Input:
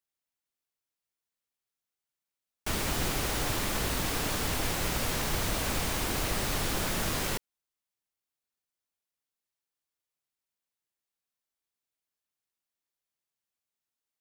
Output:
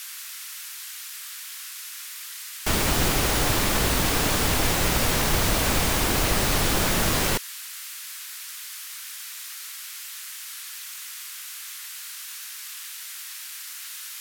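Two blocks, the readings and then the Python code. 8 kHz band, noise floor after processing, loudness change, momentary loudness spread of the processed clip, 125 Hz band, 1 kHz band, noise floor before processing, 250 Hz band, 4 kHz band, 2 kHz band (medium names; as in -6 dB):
+9.5 dB, -38 dBFS, +4.5 dB, 13 LU, +8.0 dB, +8.0 dB, under -85 dBFS, +8.0 dB, +8.5 dB, +8.5 dB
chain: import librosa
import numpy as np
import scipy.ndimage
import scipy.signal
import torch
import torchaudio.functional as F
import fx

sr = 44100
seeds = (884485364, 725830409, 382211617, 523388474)

y = fx.dmg_noise_band(x, sr, seeds[0], low_hz=1300.0, high_hz=16000.0, level_db=-46.0)
y = fx.quant_float(y, sr, bits=4)
y = y * 10.0 ** (8.0 / 20.0)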